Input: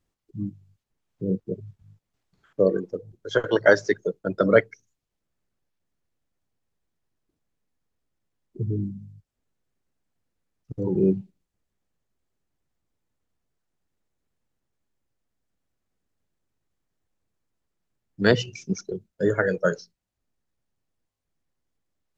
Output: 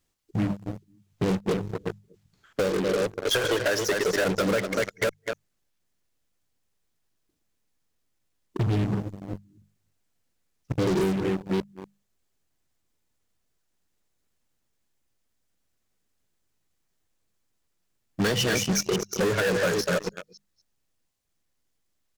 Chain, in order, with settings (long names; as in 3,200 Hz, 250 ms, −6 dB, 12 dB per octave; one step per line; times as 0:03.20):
delay that plays each chunk backwards 283 ms, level −11 dB
mains-hum notches 50/100/150/200 Hz
single-tap delay 241 ms −15.5 dB
in parallel at −7 dB: fuzz pedal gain 35 dB, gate −41 dBFS
on the sum: downward compressor 8 to 1, threshold −22 dBFS, peak gain reduction 13.5 dB
high-shelf EQ 2,100 Hz +8.5 dB
hard clipping −19.5 dBFS, distortion −17 dB